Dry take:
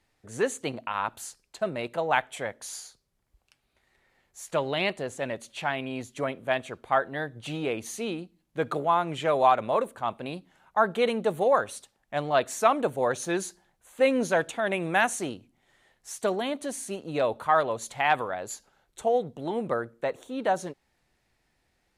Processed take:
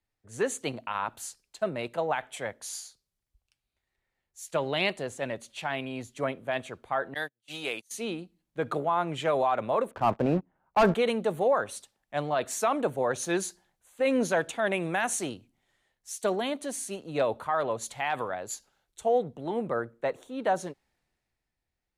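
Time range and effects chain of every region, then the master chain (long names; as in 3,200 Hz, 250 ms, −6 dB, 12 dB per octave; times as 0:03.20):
0:07.14–0:07.91: noise gate −35 dBFS, range −35 dB + spectral tilt +3.5 dB per octave
0:09.91–0:10.94: low-pass filter 1,200 Hz + leveller curve on the samples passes 3
whole clip: brickwall limiter −17.5 dBFS; multiband upward and downward expander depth 40%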